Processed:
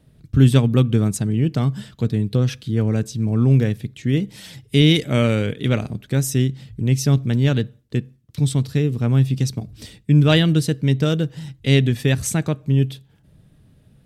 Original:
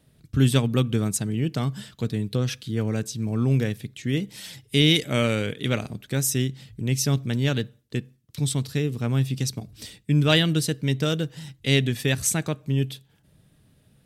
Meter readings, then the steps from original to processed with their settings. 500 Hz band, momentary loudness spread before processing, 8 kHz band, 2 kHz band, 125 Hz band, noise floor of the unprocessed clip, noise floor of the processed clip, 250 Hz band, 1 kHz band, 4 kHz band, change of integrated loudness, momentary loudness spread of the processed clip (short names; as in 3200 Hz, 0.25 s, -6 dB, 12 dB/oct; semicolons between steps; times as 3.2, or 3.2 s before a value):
+4.0 dB, 12 LU, -2.0 dB, +1.0 dB, +7.0 dB, -61 dBFS, -55 dBFS, +5.5 dB, +2.5 dB, 0.0 dB, +5.0 dB, 11 LU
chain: tilt -1.5 dB/oct; gain +2.5 dB